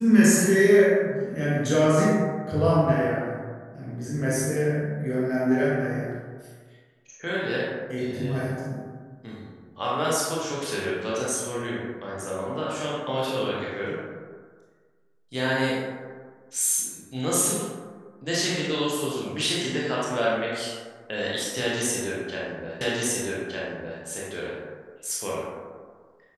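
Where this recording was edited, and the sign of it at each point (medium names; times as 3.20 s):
22.81 s: repeat of the last 1.21 s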